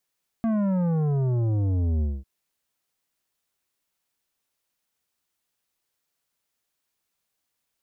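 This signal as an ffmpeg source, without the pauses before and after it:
ffmpeg -f lavfi -i "aevalsrc='0.0794*clip((1.8-t)/0.22,0,1)*tanh(3.35*sin(2*PI*230*1.8/log(65/230)*(exp(log(65/230)*t/1.8)-1)))/tanh(3.35)':duration=1.8:sample_rate=44100" out.wav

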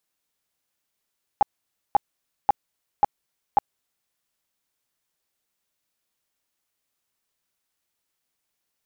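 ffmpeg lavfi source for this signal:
ffmpeg -f lavfi -i "aevalsrc='0.266*sin(2*PI*820*mod(t,0.54))*lt(mod(t,0.54),13/820)':duration=2.7:sample_rate=44100" out.wav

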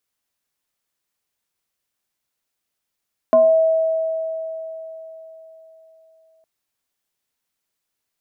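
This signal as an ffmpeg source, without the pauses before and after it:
ffmpeg -f lavfi -i "aevalsrc='0.376*pow(10,-3*t/4)*sin(2*PI*646*t+0.51*pow(10,-3*t/0.41)*sin(2*PI*0.62*646*t))':duration=3.11:sample_rate=44100" out.wav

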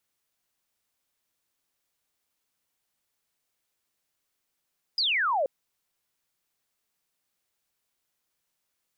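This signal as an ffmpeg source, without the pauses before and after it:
ffmpeg -f lavfi -i "aevalsrc='0.075*clip(t/0.002,0,1)*clip((0.48-t)/0.002,0,1)*sin(2*PI*5100*0.48/log(510/5100)*(exp(log(510/5100)*t/0.48)-1))':duration=0.48:sample_rate=44100" out.wav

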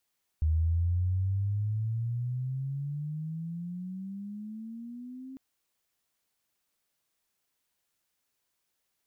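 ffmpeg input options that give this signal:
ffmpeg -f lavfi -i "aevalsrc='pow(10,(-22.5-18*t/4.95)/20)*sin(2*PI*77.3*4.95/(21.5*log(2)/12)*(exp(21.5*log(2)/12*t/4.95)-1))':duration=4.95:sample_rate=44100" out.wav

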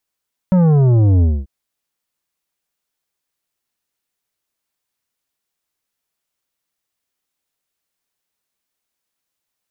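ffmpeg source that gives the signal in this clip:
ffmpeg -f lavfi -i "aevalsrc='0.316*clip((0.94-t)/0.24,0,1)*tanh(3.16*sin(2*PI*190*0.94/log(65/190)*(exp(log(65/190)*t/0.94)-1)))/tanh(3.16)':duration=0.94:sample_rate=44100" out.wav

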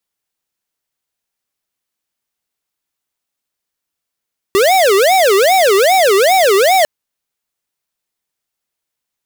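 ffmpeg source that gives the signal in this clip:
ffmpeg -f lavfi -i "aevalsrc='0.316*(2*lt(mod((576.5*t-192.5/(2*PI*2.5)*sin(2*PI*2.5*t)),1),0.5)-1)':duration=2.3:sample_rate=44100" out.wav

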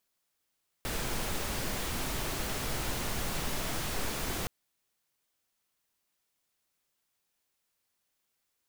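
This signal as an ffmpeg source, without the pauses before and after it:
ffmpeg -f lavfi -i "anoisesrc=color=pink:amplitude=0.108:duration=3.62:sample_rate=44100:seed=1" out.wav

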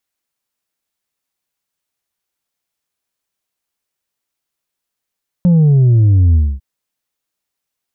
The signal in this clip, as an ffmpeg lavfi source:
ffmpeg -f lavfi -i "aevalsrc='0.447*clip((1.15-t)/0.25,0,1)*tanh(1.41*sin(2*PI*180*1.15/log(65/180)*(exp(log(65/180)*t/1.15)-1)))/tanh(1.41)':duration=1.15:sample_rate=44100" out.wav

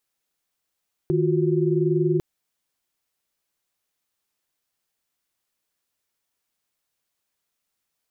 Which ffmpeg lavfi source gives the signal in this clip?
ffmpeg -f lavfi -i "aevalsrc='0.075*(sin(2*PI*155.56*t)+sin(2*PI*349.23*t)+sin(2*PI*369.99*t))':duration=1.1:sample_rate=44100" out.wav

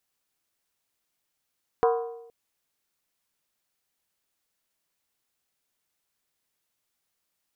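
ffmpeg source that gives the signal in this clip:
ffmpeg -f lavfi -i "aevalsrc='0.133*pow(10,-3*t/0.89)*sin(2*PI*464*t)+0.0841*pow(10,-3*t/0.705)*sin(2*PI*739.6*t)+0.0531*pow(10,-3*t/0.609)*sin(2*PI*991.1*t)+0.0335*pow(10,-3*t/0.587)*sin(2*PI*1065.3*t)+0.0211*pow(10,-3*t/0.546)*sin(2*PI*1231*t)+0.0133*pow(10,-3*t/0.521)*sin(2*PI*1354*t)+0.00841*pow(10,-3*t/0.501)*sin(2*PI*1464.4*t)+0.00531*pow(10,-3*t/0.476)*sin(2*PI*1624.5*t)':duration=0.47:sample_rate=44100" out.wav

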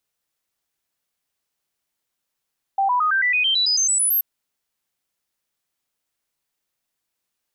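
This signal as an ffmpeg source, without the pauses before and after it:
ffmpeg -f lavfi -i "aevalsrc='0.158*clip(min(mod(t,0.11),0.11-mod(t,0.11))/0.005,0,1)*sin(2*PI*784*pow(2,floor(t/0.11)/3)*mod(t,0.11))':duration=1.43:sample_rate=44100" out.wav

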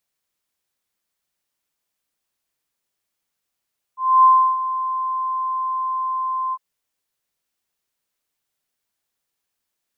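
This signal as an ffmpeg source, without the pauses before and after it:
ffmpeg -f lavfi -i "aevalsrc='0.422*sin(2*PI*1040*t)':duration=2.606:sample_rate=44100,afade=type=in:duration=0.267,afade=type=out:start_time=0.267:duration=0.33:silence=0.224,afade=type=out:start_time=2.56:duration=0.046" out.wav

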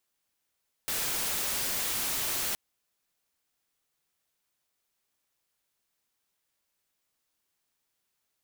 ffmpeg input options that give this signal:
ffmpeg -f lavfi -i "anoisesrc=color=white:amplitude=0.0488:duration=1.67:sample_rate=44100:seed=1" out.wav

